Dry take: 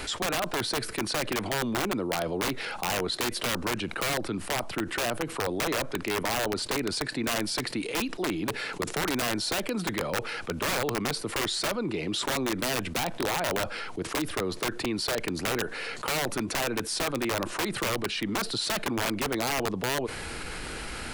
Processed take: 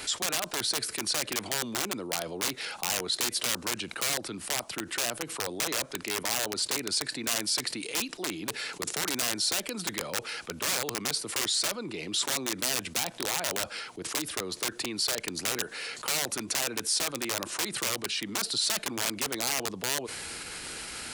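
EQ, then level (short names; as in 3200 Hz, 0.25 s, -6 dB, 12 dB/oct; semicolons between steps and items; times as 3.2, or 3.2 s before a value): HPF 110 Hz 6 dB/oct; dynamic EQ 7000 Hz, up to +5 dB, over -46 dBFS, Q 0.74; high shelf 2700 Hz +8.5 dB; -6.5 dB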